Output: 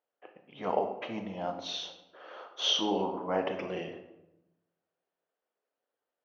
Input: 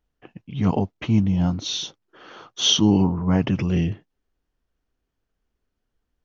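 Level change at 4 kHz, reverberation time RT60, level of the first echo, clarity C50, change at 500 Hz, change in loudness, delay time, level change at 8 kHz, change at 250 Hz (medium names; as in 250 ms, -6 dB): -8.5 dB, 0.90 s, no echo, 8.0 dB, -2.5 dB, -11.5 dB, no echo, no reading, -17.5 dB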